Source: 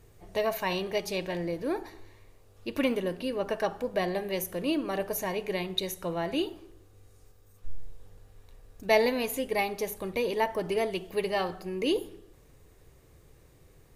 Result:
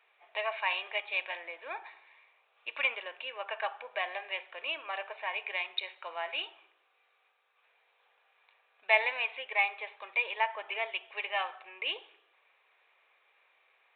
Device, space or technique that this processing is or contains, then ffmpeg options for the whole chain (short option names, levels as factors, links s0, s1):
musical greeting card: -af "aresample=8000,aresample=44100,highpass=f=770:w=0.5412,highpass=f=770:w=1.3066,equalizer=f=2400:t=o:w=0.24:g=10"